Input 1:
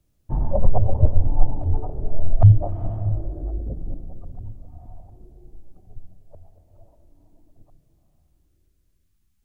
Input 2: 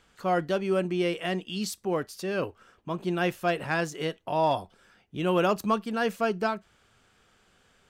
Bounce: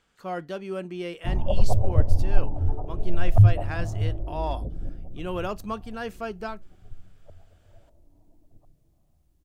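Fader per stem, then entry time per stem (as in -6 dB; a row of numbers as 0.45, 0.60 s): -3.0, -6.5 dB; 0.95, 0.00 s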